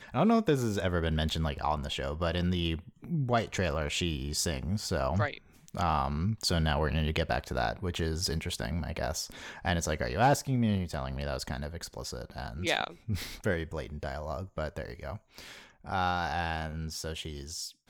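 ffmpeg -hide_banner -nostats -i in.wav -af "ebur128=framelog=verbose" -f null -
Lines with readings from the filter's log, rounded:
Integrated loudness:
  I:         -31.8 LUFS
  Threshold: -42.0 LUFS
Loudness range:
  LRA:         4.7 LU
  Threshold: -52.2 LUFS
  LRA low:   -35.5 LUFS
  LRA high:  -30.8 LUFS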